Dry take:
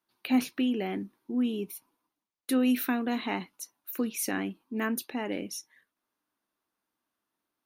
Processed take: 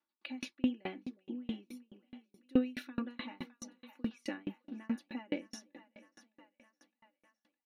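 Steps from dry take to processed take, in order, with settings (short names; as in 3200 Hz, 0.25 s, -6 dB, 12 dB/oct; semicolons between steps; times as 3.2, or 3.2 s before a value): LPF 4500 Hz 12 dB/oct; low shelf 81 Hz -9.5 dB; comb 3.5 ms, depth 98%; on a send: split-band echo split 610 Hz, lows 0.36 s, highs 0.611 s, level -15.5 dB; on the sum: dB-ramp tremolo decaying 4.7 Hz, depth 35 dB; gain -2 dB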